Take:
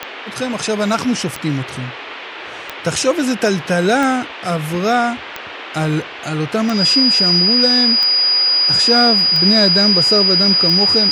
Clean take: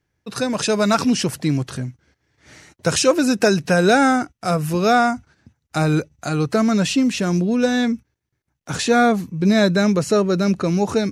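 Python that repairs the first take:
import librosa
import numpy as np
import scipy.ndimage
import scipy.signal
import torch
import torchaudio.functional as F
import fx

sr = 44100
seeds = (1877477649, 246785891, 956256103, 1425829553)

y = fx.fix_declick_ar(x, sr, threshold=10.0)
y = fx.notch(y, sr, hz=4900.0, q=30.0)
y = fx.noise_reduce(y, sr, print_start_s=1.92, print_end_s=2.42, reduce_db=30.0)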